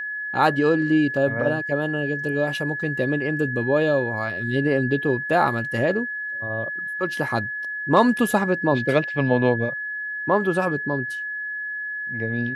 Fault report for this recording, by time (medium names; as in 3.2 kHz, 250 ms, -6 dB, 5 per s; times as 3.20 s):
whine 1.7 kHz -27 dBFS